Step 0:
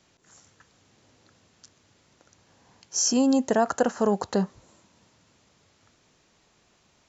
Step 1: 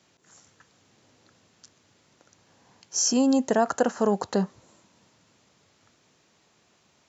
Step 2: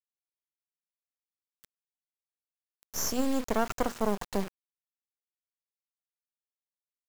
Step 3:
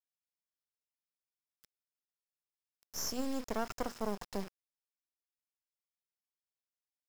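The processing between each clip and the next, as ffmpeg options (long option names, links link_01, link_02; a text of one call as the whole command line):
ffmpeg -i in.wav -af "highpass=97" out.wav
ffmpeg -i in.wav -af "bandreject=frequency=60:width_type=h:width=6,bandreject=frequency=120:width_type=h:width=6,bandreject=frequency=180:width_type=h:width=6,bandreject=frequency=240:width_type=h:width=6,acrusher=bits=3:dc=4:mix=0:aa=0.000001,volume=-3.5dB" out.wav
ffmpeg -i in.wav -af "equalizer=frequency=5200:width=7.8:gain=9,volume=-8dB" out.wav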